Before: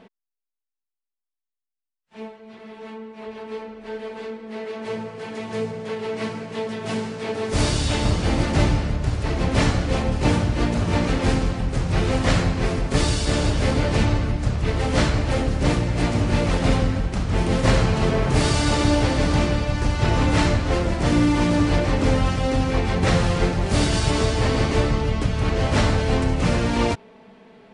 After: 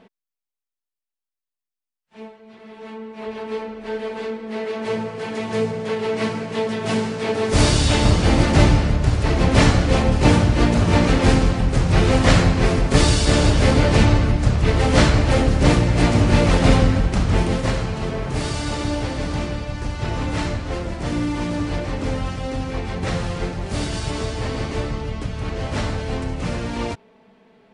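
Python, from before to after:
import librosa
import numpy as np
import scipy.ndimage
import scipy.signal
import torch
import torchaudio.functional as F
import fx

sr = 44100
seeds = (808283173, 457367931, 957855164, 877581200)

y = fx.gain(x, sr, db=fx.line((2.57, -2.0), (3.28, 5.0), (17.29, 5.0), (17.75, -5.0)))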